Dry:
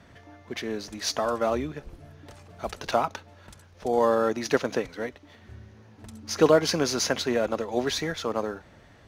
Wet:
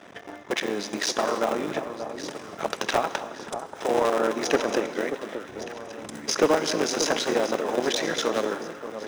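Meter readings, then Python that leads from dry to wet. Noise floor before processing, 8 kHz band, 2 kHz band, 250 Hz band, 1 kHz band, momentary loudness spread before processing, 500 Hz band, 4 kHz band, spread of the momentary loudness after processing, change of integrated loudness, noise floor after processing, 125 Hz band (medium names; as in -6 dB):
-54 dBFS, +2.5 dB, +3.5 dB, +0.5 dB, +2.0 dB, 15 LU, +0.5 dB, +2.5 dB, 12 LU, 0.0 dB, -43 dBFS, -5.5 dB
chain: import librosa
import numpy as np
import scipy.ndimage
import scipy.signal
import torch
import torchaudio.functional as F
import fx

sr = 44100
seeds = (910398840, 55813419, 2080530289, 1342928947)

p1 = fx.cycle_switch(x, sr, every=3, mode='muted')
p2 = fx.peak_eq(p1, sr, hz=13000.0, db=-13.5, octaves=0.23)
p3 = fx.notch(p2, sr, hz=4400.0, q=8.4)
p4 = fx.over_compress(p3, sr, threshold_db=-37.0, ratio=-1.0)
p5 = p3 + F.gain(torch.from_numpy(p4), -2.0).numpy()
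p6 = scipy.signal.sosfilt(scipy.signal.butter(2, 280.0, 'highpass', fs=sr, output='sos'), p5)
p7 = fx.rev_gated(p6, sr, seeds[0], gate_ms=330, shape='flat', drr_db=10.5)
p8 = fx.transient(p7, sr, attack_db=5, sustain_db=-1)
p9 = 10.0 ** (-12.5 / 20.0) * np.tanh(p8 / 10.0 ** (-12.5 / 20.0))
p10 = fx.low_shelf(p9, sr, hz=470.0, db=2.5)
y = p10 + fx.echo_alternate(p10, sr, ms=582, hz=1200.0, feedback_pct=63, wet_db=-9, dry=0)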